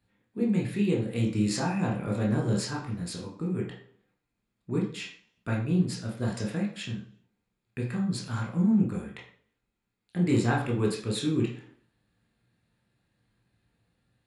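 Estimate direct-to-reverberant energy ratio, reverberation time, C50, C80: -2.0 dB, 0.55 s, 6.5 dB, 10.5 dB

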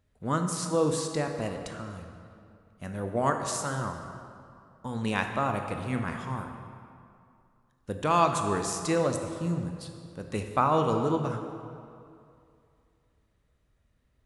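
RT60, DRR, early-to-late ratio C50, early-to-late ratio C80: 2.4 s, 4.5 dB, 5.5 dB, 6.5 dB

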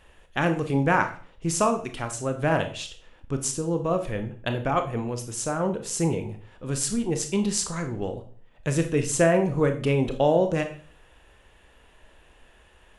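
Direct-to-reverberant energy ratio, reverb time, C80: 6.5 dB, 0.45 s, 15.5 dB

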